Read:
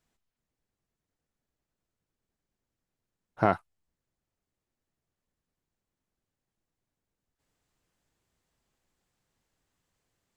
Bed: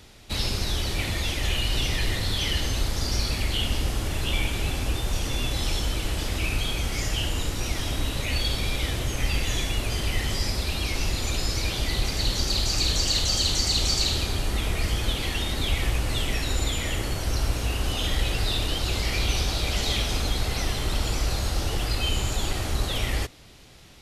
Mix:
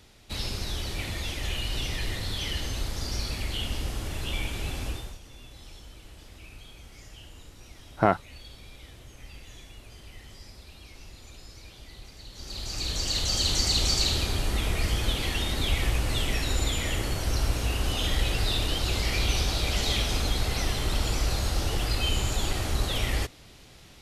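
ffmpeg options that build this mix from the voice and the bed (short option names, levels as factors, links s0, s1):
-filter_complex "[0:a]adelay=4600,volume=1.33[s0];[1:a]volume=5.01,afade=t=out:st=4.86:d=0.32:silence=0.177828,afade=t=in:st=12.32:d=1.27:silence=0.105925[s1];[s0][s1]amix=inputs=2:normalize=0"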